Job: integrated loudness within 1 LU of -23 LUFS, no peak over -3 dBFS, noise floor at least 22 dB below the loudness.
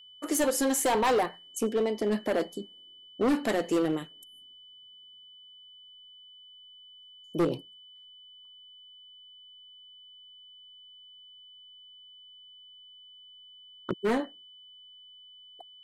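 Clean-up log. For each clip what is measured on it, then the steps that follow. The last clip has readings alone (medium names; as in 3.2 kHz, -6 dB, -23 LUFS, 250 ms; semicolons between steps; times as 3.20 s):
clipped samples 1.3%; clipping level -21.0 dBFS; steady tone 3 kHz; tone level -50 dBFS; loudness -29.0 LUFS; peak level -21.0 dBFS; loudness target -23.0 LUFS
-> clip repair -21 dBFS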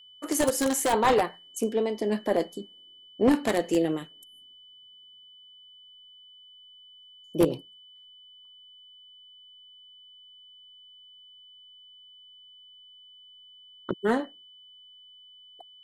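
clipped samples 0.0%; steady tone 3 kHz; tone level -50 dBFS
-> band-stop 3 kHz, Q 30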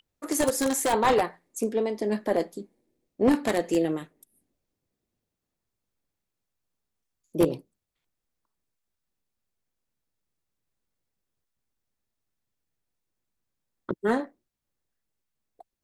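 steady tone not found; loudness -26.5 LUFS; peak level -12.0 dBFS; loudness target -23.0 LUFS
-> trim +3.5 dB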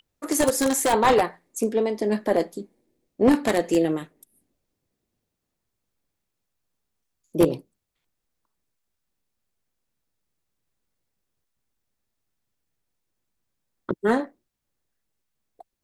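loudness -23.0 LUFS; peak level -8.5 dBFS; noise floor -81 dBFS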